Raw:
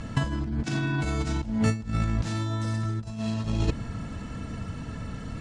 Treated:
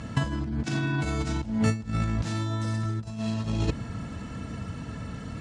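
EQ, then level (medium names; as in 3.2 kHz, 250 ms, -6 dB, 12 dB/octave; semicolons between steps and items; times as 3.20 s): high-pass 58 Hz; 0.0 dB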